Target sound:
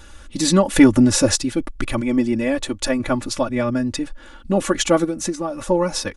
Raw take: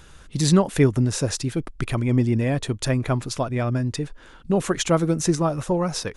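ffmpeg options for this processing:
ffmpeg -i in.wav -filter_complex "[0:a]aecho=1:1:3.5:0.95,asettb=1/sr,asplit=3[link_01][link_02][link_03];[link_01]atrim=end=0.704[link_04];[link_02]atrim=start=0.7:end=1.36,asetpts=PTS-STARTPTS,afade=type=in:duration=0.004:curve=qsin,afade=type=out:start_time=0.656:duration=0.004:curve=qsin,acontrast=22[link_05];[link_03]atrim=start=1.356[link_06];[link_04][link_05]acrossfade=duration=0.004:curve1=hsin:curve2=qsin[link_07];[link_07][link_06]acrossfade=duration=0.004:curve1=qsin:curve2=hsin,asettb=1/sr,asplit=3[link_08][link_09][link_10];[link_08]atrim=end=2.014[link_11];[link_09]atrim=start=2.01:end=3,asetpts=PTS-STARTPTS,afade=type=in:duration=0.004:curve=qsin,afade=type=out:start_time=0.986:duration=0.004:curve=qsin,equalizer=frequency=140:width_type=o:width=0.94:gain=-10.5[link_12];[link_10]atrim=start=2.996[link_13];[link_11][link_12]acrossfade=duration=0.004:curve1=hsin:curve2=qsin[link_14];[link_14][link_13]acrossfade=duration=0.004:curve1=qsin:curve2=hsin,asettb=1/sr,asplit=3[link_15][link_16][link_17];[link_15]atrim=end=5.044[link_18];[link_16]atrim=start=5.04:end=5.68,asetpts=PTS-STARTPTS,afade=type=in:duration=0.004:curve=qsin,afade=type=out:start_time=0.636:duration=0.004:curve=qsin,acompressor=threshold=-23dB:ratio=5[link_19];[link_17]atrim=start=5.676[link_20];[link_18][link_19]acrossfade=duration=0.004:curve1=hsin:curve2=qsin[link_21];[link_21][link_20]acrossfade=duration=0.004:curve1=qsin:curve2=hsin,volume=1.5dB" out.wav

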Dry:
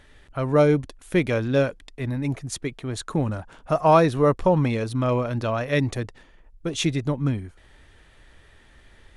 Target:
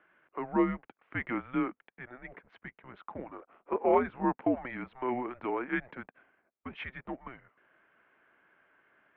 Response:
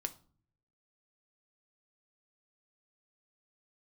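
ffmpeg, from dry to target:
-filter_complex "[0:a]asplit=2[link_01][link_02];[link_02]aeval=exprs='sgn(val(0))*max(abs(val(0))-0.00841,0)':channel_layout=same,volume=-8.5dB[link_03];[link_01][link_03]amix=inputs=2:normalize=0,asettb=1/sr,asplit=3[link_04][link_05][link_06];[link_04]atrim=end=2.434[link_07];[link_05]atrim=start=2.43:end=4.24,asetpts=PTS-STARTPTS,afade=type=in:duration=0.004:curve=qsin,afade=type=out:start_time=1.806:duration=0.004:curve=qsin,tremolo=f=190:d=0.519[link_08];[link_06]atrim=start=4.236[link_09];[link_07][link_08]acrossfade=duration=0.004:curve1=hsin:curve2=qsin[link_10];[link_10][link_09]acrossfade=duration=0.004:curve1=qsin:curve2=hsin,highpass=frequency=560:width_type=q:width=0.5412,highpass=frequency=560:width_type=q:width=1.307,lowpass=frequency=2600:width_type=q:width=0.5176,lowpass=frequency=2600:width_type=q:width=0.7071,lowpass=frequency=2600:width_type=q:width=1.932,afreqshift=-250,volume=-7.5dB"

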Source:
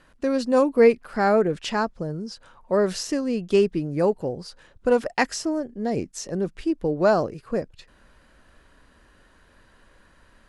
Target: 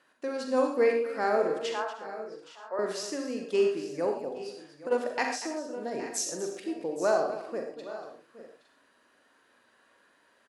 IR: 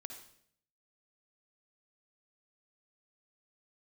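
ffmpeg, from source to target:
-filter_complex "[0:a]asettb=1/sr,asplit=3[link_01][link_02][link_03];[link_01]atrim=end=6.084[link_04];[link_02]atrim=start=6.08:end=6.6,asetpts=PTS-STARTPTS,afade=type=in:duration=0.004:curve=qsin,afade=type=out:start_time=0.516:duration=0.004:curve=qsin,aemphasis=mode=production:type=75kf[link_05];[link_03]atrim=start=6.596[link_06];[link_04][link_05]acrossfade=duration=0.004:curve1=hsin:curve2=qsin[link_07];[link_07][link_06]acrossfade=duration=0.004:curve1=qsin:curve2=hsin,highpass=340,asettb=1/sr,asplit=3[link_08][link_09][link_10];[link_08]atrim=end=1.704[link_11];[link_09]atrim=start=1.7:end=2.79,asetpts=PTS-STARTPTS,afade=type=in:duration=0.004:curve=qsin,afade=type=out:start_time=1.086:duration=0.004:curve=qsin,acrossover=split=480 2000:gain=0.0794 1 0.158[link_12][link_13][link_14];[link_12][link_13][link_14]amix=inputs=3:normalize=0[link_15];[link_10]atrim=start=2.786[link_16];[link_11][link_15]acrossfade=duration=0.004:curve1=hsin:curve2=qsin[link_17];[link_17][link_16]acrossfade=duration=0.004:curve1=qsin:curve2=hsin,aecho=1:1:43|238|819|860:0.355|0.211|0.15|0.158[link_18];[1:a]atrim=start_sample=2205,atrim=end_sample=6174[link_19];[link_18][link_19]afir=irnorm=-1:irlink=0,asplit=3[link_20][link_21][link_22];[link_20]afade=type=out:start_time=4.28:duration=0.02[link_23];[link_21]acompressor=threshold=-31dB:ratio=6,afade=type=in:start_time=4.28:duration=0.02,afade=type=out:start_time=4.9:duration=0.02[link_24];[link_22]afade=type=in:start_time=4.9:duration=0.02[link_25];[link_23][link_24][link_25]amix=inputs=3:normalize=0,volume=-2dB"

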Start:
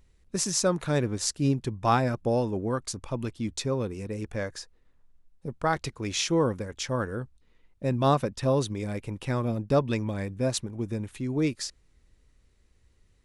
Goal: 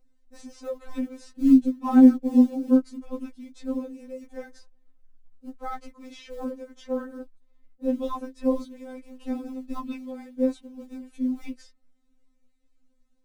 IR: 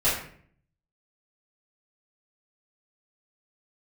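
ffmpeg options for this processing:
-filter_complex "[0:a]asettb=1/sr,asplit=3[link_01][link_02][link_03];[link_01]atrim=end=1.294[link_04];[link_02]atrim=start=1.29:end=3.07,asetpts=PTS-STARTPTS,afade=type=in:duration=0.004:curve=qsin,afade=type=out:start_time=1.776:duration=0.004:curve=qsin,equalizer=frequency=260:width_type=o:width=0.87:gain=14[link_05];[link_03]atrim=start=3.066[link_06];[link_04][link_05]acrossfade=duration=0.004:curve1=hsin:curve2=qsin[link_07];[link_07][link_06]acrossfade=duration=0.004:curve1=qsin:curve2=hsin,tremolo=f=150:d=0.667,acrossover=split=3400[link_08][link_09];[link_08]flanger=delay=6.3:depth=3:regen=-32:speed=1.8:shape=sinusoidal[link_10];[link_09]acompressor=threshold=-47dB:ratio=16[link_11];[link_10][link_11]amix=inputs=2:normalize=0,tiltshelf=frequency=1100:gain=6,asplit=2[link_12][link_13];[link_13]acrusher=bits=5:mode=log:mix=0:aa=0.000001,volume=-8.5dB[link_14];[link_12][link_14]amix=inputs=2:normalize=0,afftfilt=real='re*3.46*eq(mod(b,12),0)':imag='im*3.46*eq(mod(b,12),0)':win_size=2048:overlap=0.75,volume=-2.5dB"

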